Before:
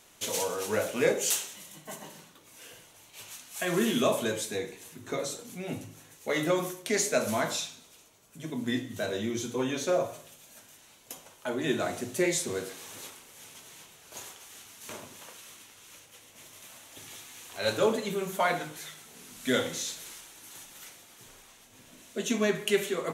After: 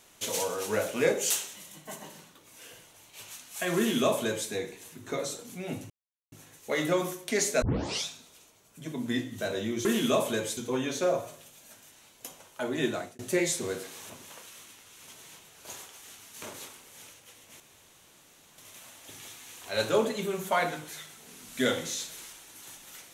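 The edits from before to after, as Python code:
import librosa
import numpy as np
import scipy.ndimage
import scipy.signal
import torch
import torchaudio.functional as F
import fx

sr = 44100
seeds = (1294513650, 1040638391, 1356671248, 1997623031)

y = fx.edit(x, sr, fx.duplicate(start_s=3.77, length_s=0.72, to_s=9.43),
    fx.insert_silence(at_s=5.9, length_s=0.42),
    fx.tape_start(start_s=7.2, length_s=0.44),
    fx.fade_out_span(start_s=11.72, length_s=0.33),
    fx.swap(start_s=12.96, length_s=0.54, other_s=15.01, other_length_s=0.93),
    fx.insert_room_tone(at_s=16.46, length_s=0.98), tone=tone)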